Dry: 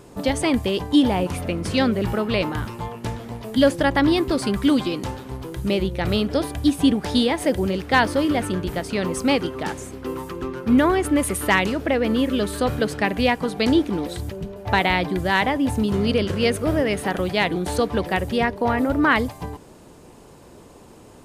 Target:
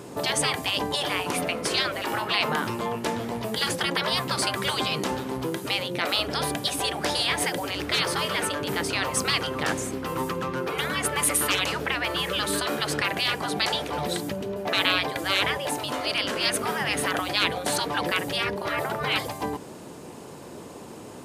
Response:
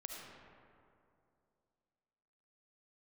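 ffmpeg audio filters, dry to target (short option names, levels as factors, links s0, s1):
-af "afftfilt=real='re*lt(hypot(re,im),0.2)':imag='im*lt(hypot(re,im),0.2)':win_size=1024:overlap=0.75,highpass=120,volume=1.88"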